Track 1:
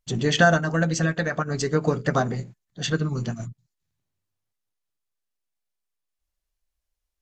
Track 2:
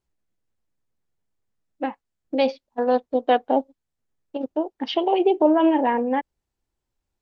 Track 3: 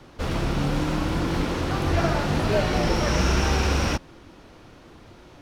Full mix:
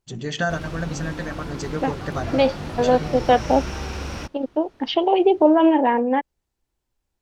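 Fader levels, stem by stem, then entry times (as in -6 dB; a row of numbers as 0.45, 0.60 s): -6.5, +2.5, -8.0 dB; 0.00, 0.00, 0.30 s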